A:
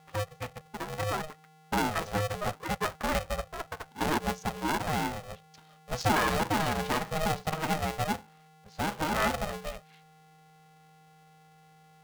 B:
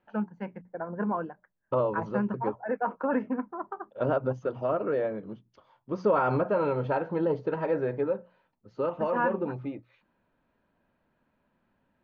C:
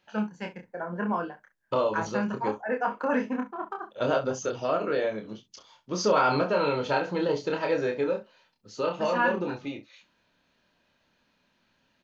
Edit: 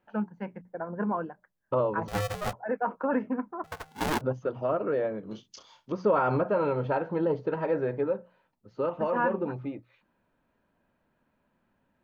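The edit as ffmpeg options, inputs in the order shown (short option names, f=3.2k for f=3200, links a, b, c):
-filter_complex "[0:a]asplit=2[a][b];[1:a]asplit=4[c][d][e][f];[c]atrim=end=2.082[g];[a]atrim=start=2.078:end=2.532[h];[d]atrim=start=2.528:end=3.642[i];[b]atrim=start=3.638:end=4.212[j];[e]atrim=start=4.208:end=5.312[k];[2:a]atrim=start=5.308:end=5.922[l];[f]atrim=start=5.918[m];[g][h]acrossfade=d=0.004:c1=hsin:c2=hsin[n];[n][i]acrossfade=d=0.004:c1=hsin:c2=hsin[o];[o][j]acrossfade=d=0.004:c1=hsin:c2=hsin[p];[p][k]acrossfade=d=0.004:c1=hsin:c2=hsin[q];[q][l]acrossfade=d=0.004:c1=hsin:c2=hsin[r];[r][m]acrossfade=d=0.004:c1=hsin:c2=hsin"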